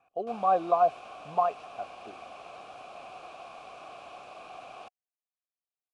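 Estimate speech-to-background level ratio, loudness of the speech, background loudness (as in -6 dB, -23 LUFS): 18.5 dB, -27.5 LUFS, -46.0 LUFS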